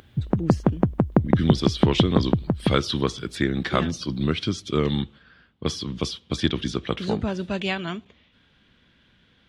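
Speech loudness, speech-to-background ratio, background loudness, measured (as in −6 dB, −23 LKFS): −26.5 LKFS, −3.0 dB, −23.5 LKFS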